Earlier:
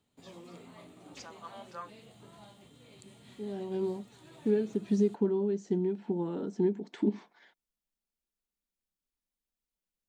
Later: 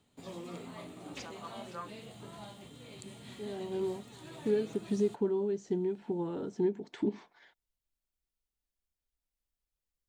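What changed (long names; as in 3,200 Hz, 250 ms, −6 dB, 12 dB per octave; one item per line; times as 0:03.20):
second voice: add low shelf with overshoot 150 Hz +7 dB, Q 3
background +6.0 dB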